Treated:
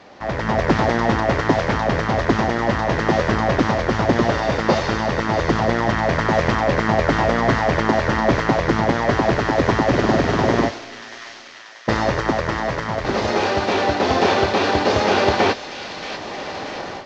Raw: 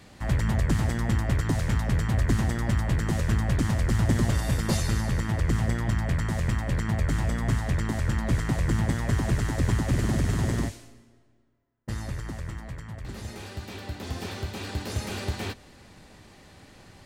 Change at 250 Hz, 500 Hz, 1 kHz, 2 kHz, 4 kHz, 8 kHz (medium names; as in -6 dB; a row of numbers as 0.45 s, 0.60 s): +9.0 dB, +18.0 dB, +18.5 dB, +13.5 dB, +12.0 dB, +2.0 dB